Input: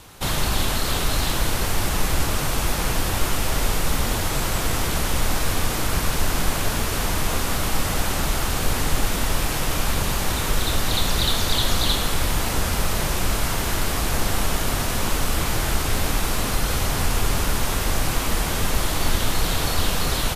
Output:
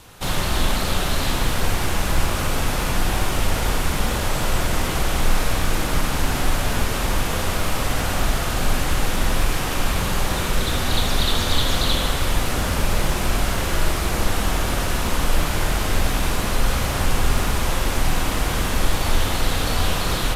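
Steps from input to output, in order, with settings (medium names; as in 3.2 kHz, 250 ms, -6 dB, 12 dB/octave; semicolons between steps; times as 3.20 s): on a send at -1 dB: reverberation RT60 1.4 s, pre-delay 44 ms; on the sum: loudspeaker Doppler distortion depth 0.15 ms; trim -1 dB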